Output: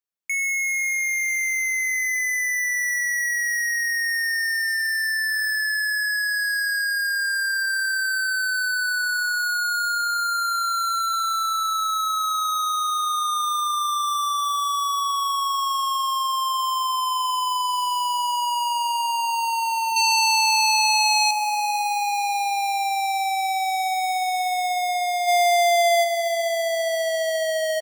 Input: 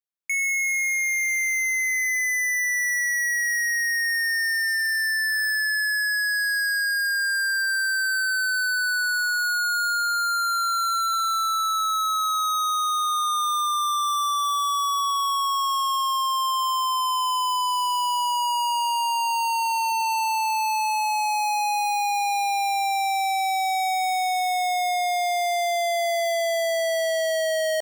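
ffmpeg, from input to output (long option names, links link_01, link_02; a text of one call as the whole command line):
ffmpeg -i in.wav -filter_complex "[0:a]asettb=1/sr,asplit=3[link_01][link_02][link_03];[link_01]atrim=end=19.964[link_04];[link_02]atrim=start=19.96:end=21.31,asetpts=PTS-STARTPTS,afade=type=in:duration=0.004:curve=qsin,afade=type=out:start_time=1.346:duration=0.004:curve=qsin,equalizer=frequency=4700:width_type=o:width=1.9:gain=14.5[link_05];[link_03]atrim=start=21.306[link_06];[link_04][link_05]acrossfade=duration=0.004:curve1=hsin:curve2=qsin[link_07];[link_07][link_06]acrossfade=duration=0.004:curve1=qsin:curve2=hsin,asplit=3[link_08][link_09][link_10];[link_08]afade=type=out:start_time=25.27:duration=0.02[link_11];[link_09]acontrast=50,afade=type=in:start_time=25.27:duration=0.02,afade=type=out:start_time=26.03:duration=0.02[link_12];[link_10]afade=type=in:start_time=26.03:duration=0.02[link_13];[link_11][link_12][link_13]amix=inputs=3:normalize=0,aecho=1:1:483|966|1449|1932:0.141|0.0706|0.0353|0.0177" out.wav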